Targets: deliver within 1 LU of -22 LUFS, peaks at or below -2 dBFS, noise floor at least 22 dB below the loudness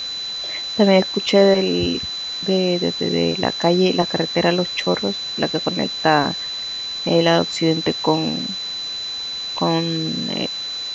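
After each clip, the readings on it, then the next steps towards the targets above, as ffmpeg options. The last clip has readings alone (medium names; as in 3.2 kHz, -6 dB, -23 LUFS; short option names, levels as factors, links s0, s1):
steady tone 4 kHz; tone level -25 dBFS; noise floor -28 dBFS; noise floor target -42 dBFS; loudness -19.5 LUFS; peak level -1.0 dBFS; loudness target -22.0 LUFS
-> -af "bandreject=f=4000:w=30"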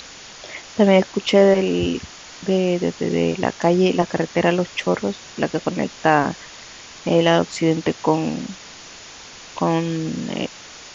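steady tone not found; noise floor -40 dBFS; noise floor target -42 dBFS
-> -af "afftdn=nr=6:nf=-40"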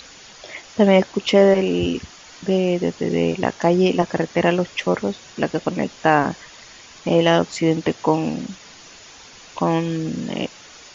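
noise floor -44 dBFS; loudness -20.0 LUFS; peak level -1.5 dBFS; loudness target -22.0 LUFS
-> -af "volume=0.794"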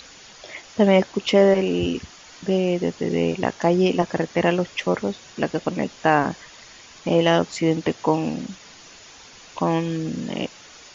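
loudness -22.0 LUFS; peak level -3.5 dBFS; noise floor -46 dBFS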